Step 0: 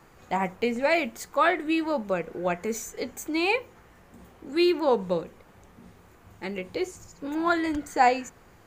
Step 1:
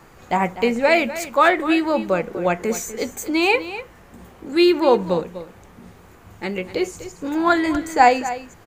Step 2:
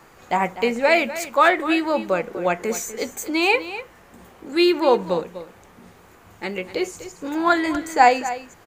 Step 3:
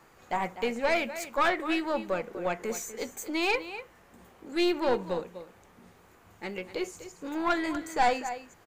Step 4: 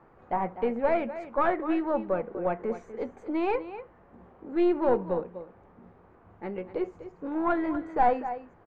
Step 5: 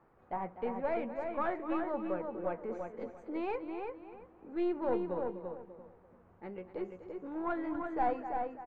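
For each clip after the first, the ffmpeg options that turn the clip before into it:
-af "aecho=1:1:247:0.211,volume=2.24"
-af "lowshelf=f=230:g=-8"
-af "aeval=exprs='(tanh(3.55*val(0)+0.45)-tanh(0.45))/3.55':c=same,volume=0.473"
-af "lowpass=1100,volume=1.41"
-filter_complex "[0:a]asplit=2[s0][s1];[s1]adelay=340,lowpass=f=2900:p=1,volume=0.596,asplit=2[s2][s3];[s3]adelay=340,lowpass=f=2900:p=1,volume=0.23,asplit=2[s4][s5];[s5]adelay=340,lowpass=f=2900:p=1,volume=0.23[s6];[s0][s2][s4][s6]amix=inputs=4:normalize=0,volume=0.355"

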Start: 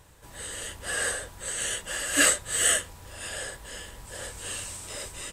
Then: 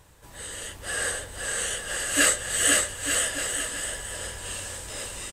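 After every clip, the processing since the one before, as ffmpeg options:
-af "aecho=1:1:510|892.5|1179|1395|1556:0.631|0.398|0.251|0.158|0.1"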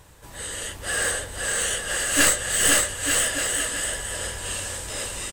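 -af "aeval=exprs='clip(val(0),-1,0.0562)':c=same,volume=1.68"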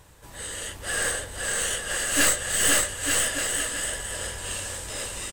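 -af "aeval=exprs='(tanh(5.01*val(0)+0.5)-tanh(0.5))/5.01':c=same"

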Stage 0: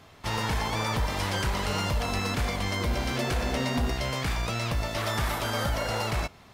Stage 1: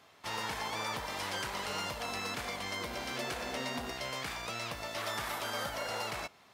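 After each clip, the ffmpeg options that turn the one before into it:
-af "highpass=f=470:p=1,volume=0.531"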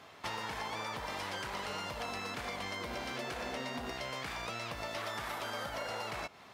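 -af "acompressor=threshold=0.00794:ratio=10,highshelf=f=5000:g=-7,volume=2.24"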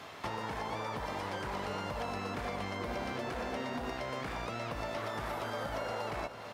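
-filter_complex "[0:a]acrossover=split=710|1800[s0][s1][s2];[s0]acompressor=threshold=0.00631:ratio=4[s3];[s1]acompressor=threshold=0.00316:ratio=4[s4];[s2]acompressor=threshold=0.00126:ratio=4[s5];[s3][s4][s5]amix=inputs=3:normalize=0,aecho=1:1:449|898|1347|1796|2245|2694|3143:0.251|0.151|0.0904|0.0543|0.0326|0.0195|0.0117,volume=2.24"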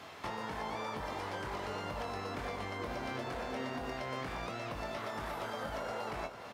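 -filter_complex "[0:a]asplit=2[s0][s1];[s1]adelay=23,volume=0.447[s2];[s0][s2]amix=inputs=2:normalize=0,volume=0.75"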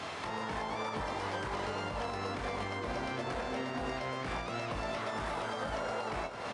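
-af "alimiter=level_in=3.98:limit=0.0631:level=0:latency=1:release=228,volume=0.251,volume=2.82" -ar 22050 -c:a libvorbis -b:a 64k

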